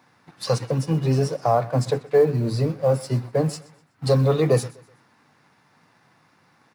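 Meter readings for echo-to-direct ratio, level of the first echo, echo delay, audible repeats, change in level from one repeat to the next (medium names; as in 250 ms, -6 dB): -20.5 dB, -21.0 dB, 125 ms, 2, -9.5 dB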